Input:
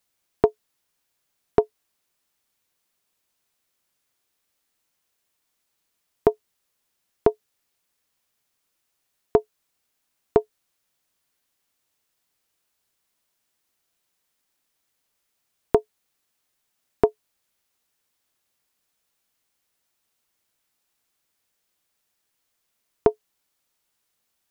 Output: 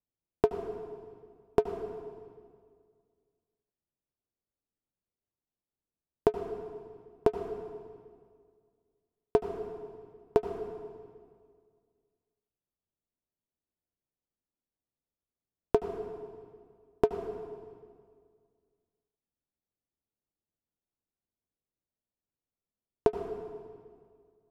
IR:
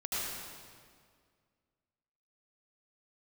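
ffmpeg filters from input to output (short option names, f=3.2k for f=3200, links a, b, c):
-filter_complex "[0:a]adynamicsmooth=sensitivity=5:basefreq=510,asplit=2[a][b];[1:a]atrim=start_sample=2205[c];[b][c]afir=irnorm=-1:irlink=0,volume=-10dB[d];[a][d]amix=inputs=2:normalize=0,volume=-8dB"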